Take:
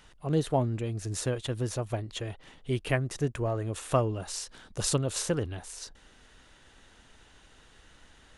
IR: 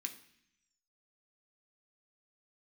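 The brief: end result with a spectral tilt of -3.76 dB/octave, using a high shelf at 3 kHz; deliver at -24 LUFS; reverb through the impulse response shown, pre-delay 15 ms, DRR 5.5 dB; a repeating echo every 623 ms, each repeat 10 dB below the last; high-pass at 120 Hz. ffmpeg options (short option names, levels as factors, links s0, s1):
-filter_complex "[0:a]highpass=120,highshelf=f=3000:g=4.5,aecho=1:1:623|1246|1869|2492:0.316|0.101|0.0324|0.0104,asplit=2[s0][s1];[1:a]atrim=start_sample=2205,adelay=15[s2];[s1][s2]afir=irnorm=-1:irlink=0,volume=0.708[s3];[s0][s3]amix=inputs=2:normalize=0,volume=2"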